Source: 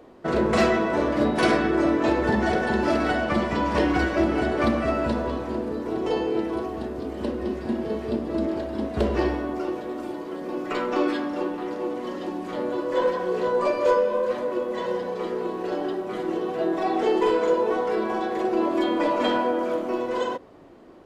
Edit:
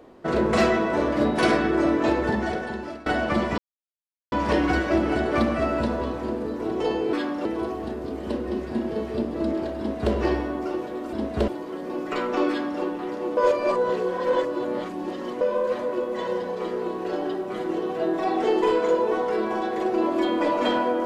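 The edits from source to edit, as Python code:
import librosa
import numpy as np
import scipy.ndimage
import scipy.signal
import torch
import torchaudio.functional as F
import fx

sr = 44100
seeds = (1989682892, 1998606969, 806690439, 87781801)

y = fx.edit(x, sr, fx.fade_out_to(start_s=2.1, length_s=0.96, floor_db=-22.5),
    fx.insert_silence(at_s=3.58, length_s=0.74),
    fx.duplicate(start_s=8.73, length_s=0.35, to_s=10.07),
    fx.duplicate(start_s=11.08, length_s=0.32, to_s=6.39),
    fx.reverse_span(start_s=11.96, length_s=2.04), tone=tone)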